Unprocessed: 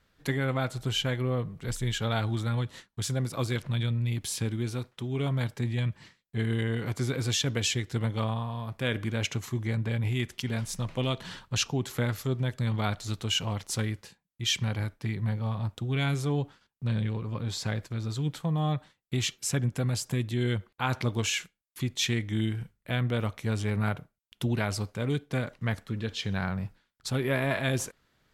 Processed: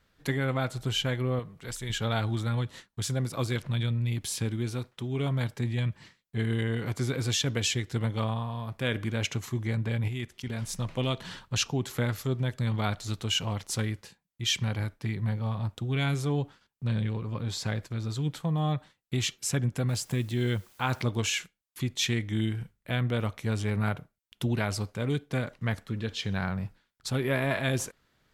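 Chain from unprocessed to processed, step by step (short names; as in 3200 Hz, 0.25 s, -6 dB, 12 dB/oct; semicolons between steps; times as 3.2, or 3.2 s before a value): 1.39–1.9 low shelf 370 Hz -9 dB; 10.08–10.62 level quantiser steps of 11 dB; 19.89–21.02 requantised 10-bit, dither triangular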